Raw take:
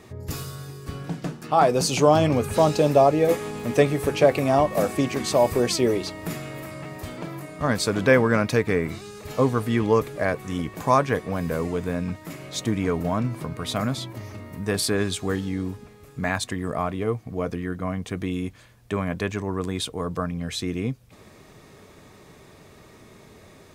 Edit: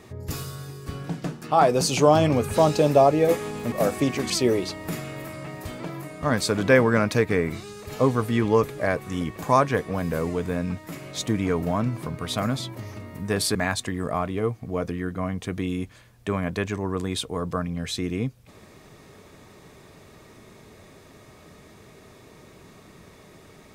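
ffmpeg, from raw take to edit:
-filter_complex "[0:a]asplit=4[a][b][c][d];[a]atrim=end=3.722[e];[b]atrim=start=4.688:end=5.272[f];[c]atrim=start=5.678:end=14.932[g];[d]atrim=start=16.188[h];[e][f]acrossfade=d=0.004:c1=hsin:c2=hsin[i];[i][g]acrossfade=d=0.004:c1=hsin:c2=hsin[j];[j][h]acrossfade=d=0.004:c1=hsin:c2=hsin"

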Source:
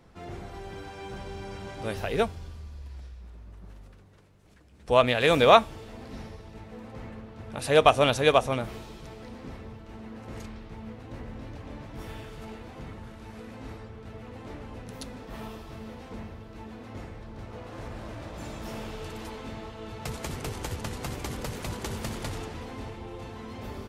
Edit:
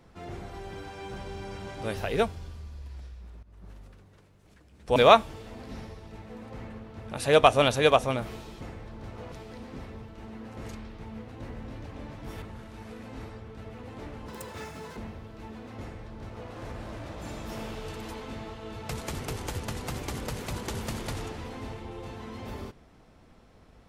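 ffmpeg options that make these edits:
-filter_complex "[0:a]asplit=8[a][b][c][d][e][f][g][h];[a]atrim=end=3.43,asetpts=PTS-STARTPTS,afade=t=out:st=3.426:d=0.004:c=hsin:silence=0.158489[i];[b]atrim=start=3.43:end=4.962,asetpts=PTS-STARTPTS,afade=t=in:d=0.25:silence=0.158489[j];[c]atrim=start=5.378:end=9.032[k];[d]atrim=start=16.958:end=17.672[l];[e]atrim=start=9.028:end=12.132[m];[f]atrim=start=12.898:end=14.764[n];[g]atrim=start=14.76:end=16.13,asetpts=PTS-STARTPTS,asetrate=87759,aresample=44100,atrim=end_sample=30360,asetpts=PTS-STARTPTS[o];[h]atrim=start=16.126[p];[i][j]concat=n=2:v=0:a=1[q];[q][k]acrossfade=d=0.004:c1=hsin:c2=hsin[r];[r][l]acrossfade=d=0.004:c1=hsin:c2=hsin[s];[s][m]acrossfade=d=0.004:c1=hsin:c2=hsin[t];[t][n]acrossfade=d=0.004:c1=hsin:c2=hsin[u];[u][o]acrossfade=d=0.004:c1=hsin:c2=hsin[v];[v][p]acrossfade=d=0.004:c1=hsin:c2=hsin"

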